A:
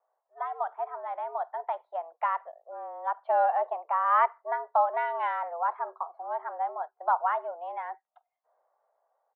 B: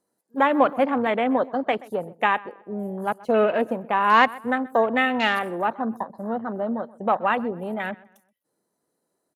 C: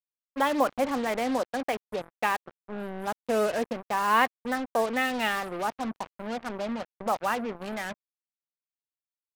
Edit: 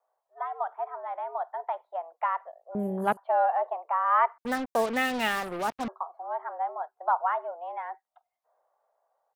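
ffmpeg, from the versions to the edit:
-filter_complex "[0:a]asplit=3[s0][s1][s2];[s0]atrim=end=2.752[s3];[1:a]atrim=start=2.748:end=3.172[s4];[s1]atrim=start=3.168:end=4.382[s5];[2:a]atrim=start=4.378:end=5.882[s6];[s2]atrim=start=5.878[s7];[s3][s4]acrossfade=d=0.004:c1=hsin:c2=hsin[s8];[s8][s5]acrossfade=d=0.004:c1=hsin:c2=hsin[s9];[s9][s6]acrossfade=d=0.004:c1=hsin:c2=hsin[s10];[s10][s7]acrossfade=d=0.004:c1=hsin:c2=hsin"

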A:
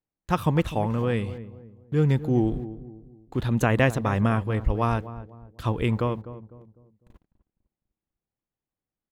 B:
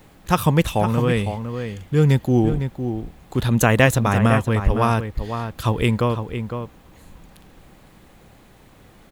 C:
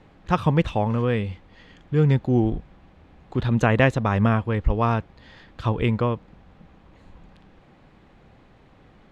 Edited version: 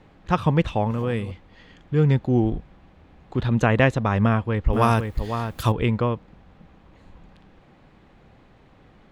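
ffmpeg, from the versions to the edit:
-filter_complex "[2:a]asplit=3[s0][s1][s2];[s0]atrim=end=0.912[s3];[0:a]atrim=start=0.908:end=1.312[s4];[s1]atrim=start=1.308:end=4.732[s5];[1:a]atrim=start=4.728:end=5.722[s6];[s2]atrim=start=5.718[s7];[s3][s4]acrossfade=d=0.004:c1=hsin:c2=hsin[s8];[s8][s5]acrossfade=d=0.004:c1=hsin:c2=hsin[s9];[s9][s6]acrossfade=d=0.004:c1=hsin:c2=hsin[s10];[s10][s7]acrossfade=d=0.004:c1=hsin:c2=hsin"

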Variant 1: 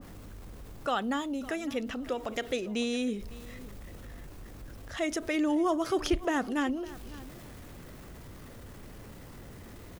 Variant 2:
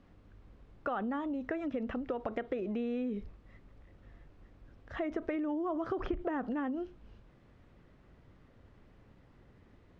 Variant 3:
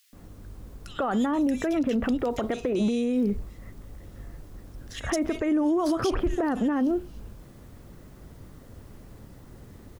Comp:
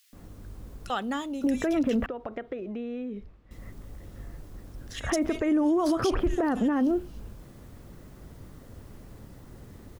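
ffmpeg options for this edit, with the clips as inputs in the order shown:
-filter_complex "[2:a]asplit=3[s0][s1][s2];[s0]atrim=end=0.902[s3];[0:a]atrim=start=0.898:end=1.442[s4];[s1]atrim=start=1.438:end=2.062[s5];[1:a]atrim=start=2.058:end=3.512[s6];[s2]atrim=start=3.508[s7];[s3][s4]acrossfade=d=0.004:c1=hsin:c2=hsin[s8];[s8][s5]acrossfade=d=0.004:c1=hsin:c2=hsin[s9];[s9][s6]acrossfade=d=0.004:c1=hsin:c2=hsin[s10];[s10][s7]acrossfade=d=0.004:c1=hsin:c2=hsin"

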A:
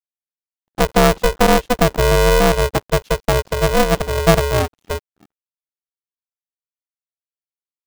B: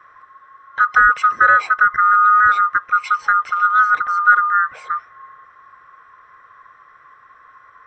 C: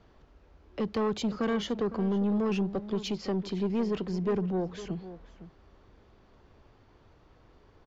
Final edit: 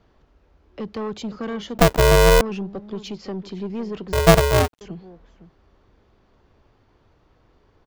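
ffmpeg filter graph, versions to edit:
-filter_complex "[0:a]asplit=2[s0][s1];[2:a]asplit=3[s2][s3][s4];[s2]atrim=end=1.782[s5];[s0]atrim=start=1.778:end=2.412[s6];[s3]atrim=start=2.408:end=4.132[s7];[s1]atrim=start=4.128:end=4.812[s8];[s4]atrim=start=4.808[s9];[s5][s6]acrossfade=d=0.004:c1=hsin:c2=hsin[s10];[s10][s7]acrossfade=d=0.004:c1=hsin:c2=hsin[s11];[s11][s8]acrossfade=d=0.004:c1=hsin:c2=hsin[s12];[s12][s9]acrossfade=d=0.004:c1=hsin:c2=hsin"

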